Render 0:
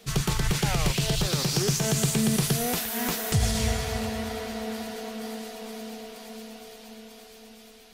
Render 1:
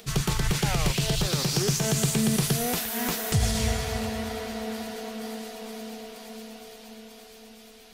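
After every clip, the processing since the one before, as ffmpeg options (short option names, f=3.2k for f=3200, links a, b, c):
-af "acompressor=mode=upward:threshold=-46dB:ratio=2.5"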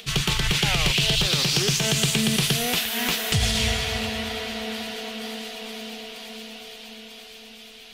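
-af "equalizer=f=3k:t=o:w=1.3:g=12.5"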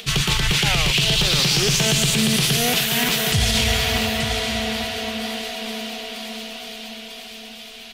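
-af "aecho=1:1:881:0.282,alimiter=level_in=13dB:limit=-1dB:release=50:level=0:latency=1,volume=-7.5dB"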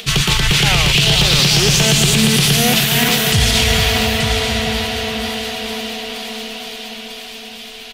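-filter_complex "[0:a]asplit=2[a][b];[b]adelay=441,lowpass=f=2k:p=1,volume=-7dB,asplit=2[c][d];[d]adelay=441,lowpass=f=2k:p=1,volume=0.33,asplit=2[e][f];[f]adelay=441,lowpass=f=2k:p=1,volume=0.33,asplit=2[g][h];[h]adelay=441,lowpass=f=2k:p=1,volume=0.33[i];[a][c][e][g][i]amix=inputs=5:normalize=0,volume=5dB"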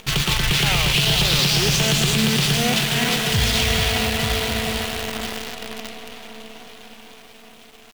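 -af "adynamicsmooth=sensitivity=2.5:basefreq=1.4k,acrusher=bits=4:dc=4:mix=0:aa=0.000001,volume=-5.5dB"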